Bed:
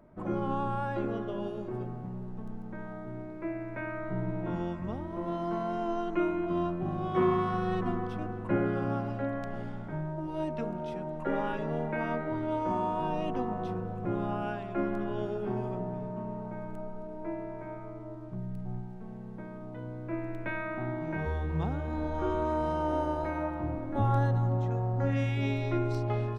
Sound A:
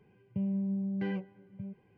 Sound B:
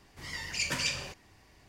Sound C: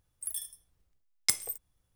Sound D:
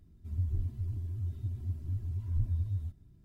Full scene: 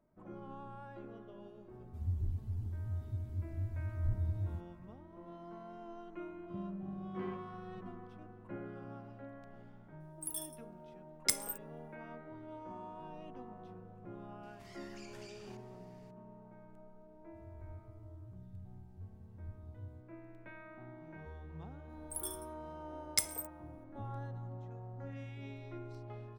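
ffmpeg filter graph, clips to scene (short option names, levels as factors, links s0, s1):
-filter_complex "[4:a]asplit=2[s0][s1];[3:a]asplit=2[s2][s3];[0:a]volume=0.141[s4];[2:a]acompressor=threshold=0.00501:ratio=6:attack=3.2:release=140:knee=1:detection=peak[s5];[s1]flanger=delay=15.5:depth=6.9:speed=2.3[s6];[s0]atrim=end=3.24,asetpts=PTS-STARTPTS,volume=0.668,afade=t=in:d=0.004:c=hsin,afade=t=out:st=3.236:d=0.004:c=hsin,adelay=1690[s7];[1:a]atrim=end=1.97,asetpts=PTS-STARTPTS,volume=0.251,afade=t=in:d=0.004:c=hsin,afade=t=out:st=1.966:d=0.004:c=hsin,adelay=272538S[s8];[s2]atrim=end=1.95,asetpts=PTS-STARTPTS,volume=0.596,afade=t=in:d=0.004:c=hsin,afade=t=out:st=1.946:d=0.004:c=hsin,adelay=10000[s9];[s5]atrim=end=1.68,asetpts=PTS-STARTPTS,volume=0.376,afade=t=in:d=0.004:c=hsin,afade=t=out:st=1.676:d=0.004:c=hsin,adelay=14430[s10];[s6]atrim=end=3.24,asetpts=PTS-STARTPTS,volume=0.2,afade=t=in:d=0.004:c=hsin,afade=t=out:st=3.236:d=0.004:c=hsin,adelay=17090[s11];[s3]atrim=end=1.95,asetpts=PTS-STARTPTS,volume=0.562,afade=t=in:d=0.004:c=hsin,afade=t=out:st=1.946:d=0.004:c=hsin,adelay=21890[s12];[s4][s7][s8][s9][s10][s11][s12]amix=inputs=7:normalize=0"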